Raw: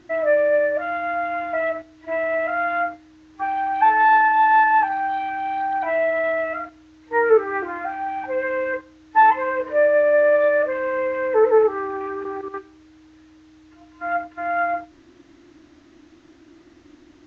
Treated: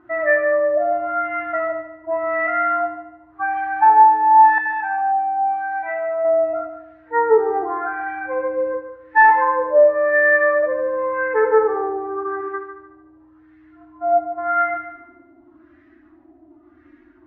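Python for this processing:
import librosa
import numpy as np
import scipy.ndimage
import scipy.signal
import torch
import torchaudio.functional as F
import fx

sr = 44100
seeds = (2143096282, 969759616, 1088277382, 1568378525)

p1 = fx.hpss_only(x, sr, part='harmonic')
p2 = fx.filter_lfo_lowpass(p1, sr, shape='sine', hz=0.9, low_hz=700.0, high_hz=1900.0, q=3.5)
p3 = fx.comb_fb(p2, sr, f0_hz=130.0, decay_s=0.18, harmonics='all', damping=0.0, mix_pct=80, at=(4.58, 6.25))
p4 = p3 + fx.echo_heads(p3, sr, ms=74, heads='first and second', feedback_pct=43, wet_db=-12, dry=0)
y = p4 * 10.0 ** (-2.0 / 20.0)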